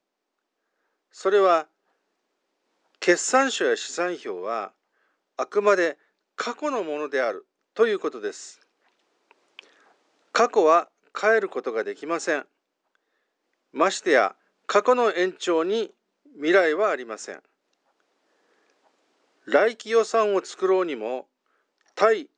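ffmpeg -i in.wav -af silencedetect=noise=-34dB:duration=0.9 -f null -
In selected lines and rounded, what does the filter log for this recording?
silence_start: 0.00
silence_end: 1.20 | silence_duration: 1.20
silence_start: 1.62
silence_end: 3.02 | silence_duration: 1.40
silence_start: 8.50
silence_end: 9.59 | silence_duration: 1.09
silence_start: 12.42
silence_end: 13.76 | silence_duration: 1.34
silence_start: 17.37
silence_end: 19.48 | silence_duration: 2.11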